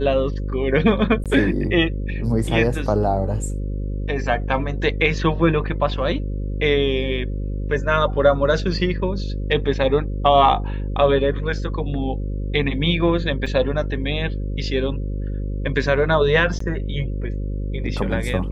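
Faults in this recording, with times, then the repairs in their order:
buzz 50 Hz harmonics 11 -25 dBFS
1.24–1.26 gap 17 ms
13.46 gap 4.8 ms
16.59–16.6 gap 14 ms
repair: de-hum 50 Hz, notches 11; interpolate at 1.24, 17 ms; interpolate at 13.46, 4.8 ms; interpolate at 16.59, 14 ms

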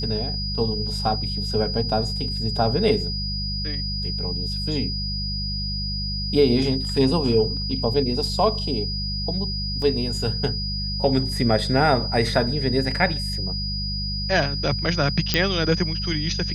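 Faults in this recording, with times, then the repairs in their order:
hum 50 Hz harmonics 4 -29 dBFS
tone 4900 Hz -28 dBFS
9.82 gap 2.1 ms
15.34 pop -4 dBFS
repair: de-click; de-hum 50 Hz, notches 4; notch 4900 Hz, Q 30; interpolate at 9.82, 2.1 ms

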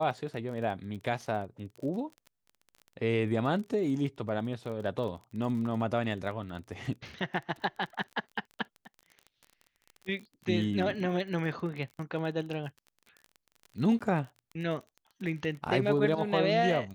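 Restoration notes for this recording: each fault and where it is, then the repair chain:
crackle 29/s -39 dBFS
13.99–14.01 gap 16 ms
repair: de-click; interpolate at 13.99, 16 ms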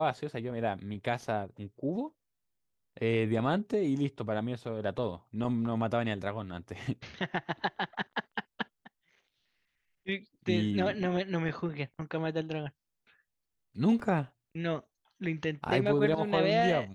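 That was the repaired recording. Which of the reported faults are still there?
none

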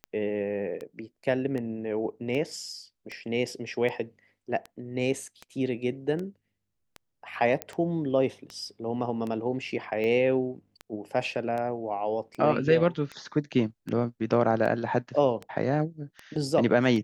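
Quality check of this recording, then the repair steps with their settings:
tick 78 rpm -23 dBFS
7.62 pop -14 dBFS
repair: de-click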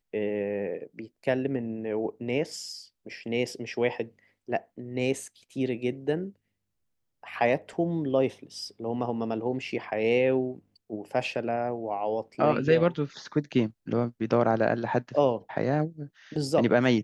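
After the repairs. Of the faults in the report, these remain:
none

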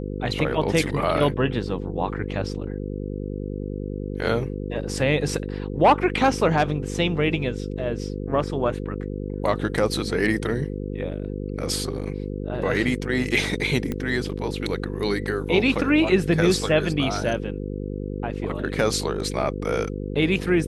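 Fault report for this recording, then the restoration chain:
buzz 50 Hz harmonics 10 -30 dBFS
13.92 pop -15 dBFS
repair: de-click; de-hum 50 Hz, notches 10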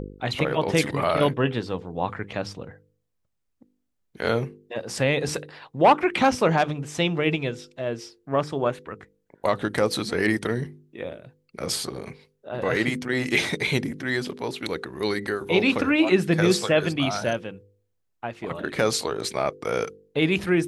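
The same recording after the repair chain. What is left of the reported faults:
none

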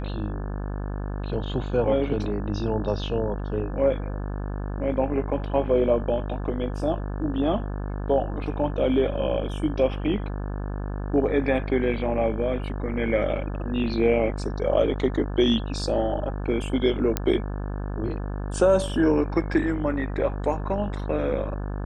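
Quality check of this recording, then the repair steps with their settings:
buzz 50 Hz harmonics 35 -30 dBFS
17.17 pop -8 dBFS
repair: de-click; de-hum 50 Hz, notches 35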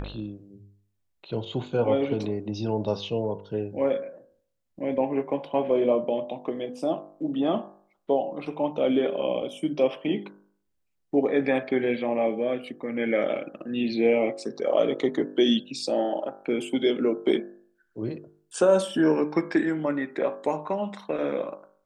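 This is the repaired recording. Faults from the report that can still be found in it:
none

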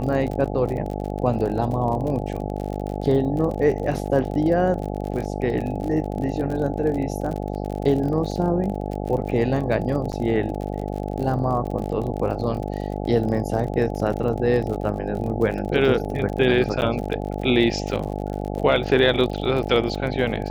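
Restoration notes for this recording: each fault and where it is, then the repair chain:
buzz 50 Hz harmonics 17 -28 dBFS
crackle 44/s -29 dBFS
10.12–10.13 gap 7.4 ms
16.81–16.82 gap 9.6 ms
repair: de-click; de-hum 50 Hz, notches 17; interpolate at 10.12, 7.4 ms; interpolate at 16.81, 9.6 ms

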